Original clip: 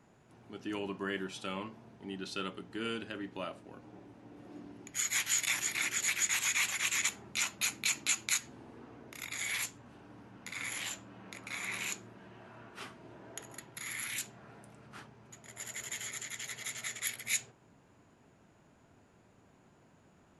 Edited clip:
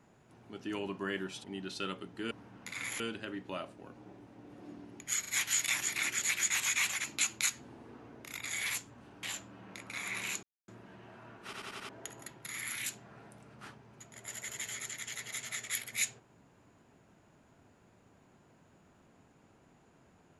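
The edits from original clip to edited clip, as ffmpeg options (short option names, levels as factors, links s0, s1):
-filter_complex "[0:a]asplit=14[s0][s1][s2][s3][s4][s5][s6][s7][s8][s9][s10][s11][s12][s13];[s0]atrim=end=1.442[s14];[s1]atrim=start=1.998:end=2.872[s15];[s2]atrim=start=10.108:end=10.802[s16];[s3]atrim=start=2.868:end=5.112[s17];[s4]atrim=start=5.068:end=5.112[s18];[s5]atrim=start=5.068:end=6.832[s19];[s6]atrim=start=7.918:end=10.112[s20];[s7]atrim=start=10.798:end=12,asetpts=PTS-STARTPTS,afade=t=out:st=1.198:d=0.004:c=hsin,apad=pad_dur=0.25[s21];[s8]atrim=start=12:end=12.852,asetpts=PTS-STARTPTS,afade=t=in:d=0.004:c=hsin[s22];[s9]atrim=start=12.758:end=12.852[s23];[s10]atrim=start=12.758:end=12.852[s24];[s11]atrim=start=12.758:end=12.852[s25];[s12]atrim=start=12.758:end=12.852[s26];[s13]atrim=start=13.208[s27];[s14][s15]acrossfade=d=0.004:c1=hsin:c2=hsin[s28];[s28][s16]acrossfade=d=0.004:c1=hsin:c2=hsin[s29];[s29][s17]acrossfade=d=0.004:c1=hsin:c2=hsin[s30];[s30][s18]acrossfade=d=0.004:c1=hsin:c2=hsin[s31];[s31][s19]acrossfade=d=0.004:c1=hsin:c2=hsin[s32];[s32][s20]acrossfade=d=0.004:c1=hsin:c2=hsin[s33];[s21][s22]concat=n=2:v=0:a=1[s34];[s33][s34]acrossfade=d=0.004:c1=hsin:c2=hsin[s35];[s35][s23]acrossfade=d=0.004:c1=hsin:c2=hsin[s36];[s36][s24]acrossfade=d=0.004:c1=hsin:c2=hsin[s37];[s37][s25]acrossfade=d=0.004:c1=hsin:c2=hsin[s38];[s38][s26]acrossfade=d=0.004:c1=hsin:c2=hsin[s39];[s39][s27]acrossfade=d=0.004:c1=hsin:c2=hsin"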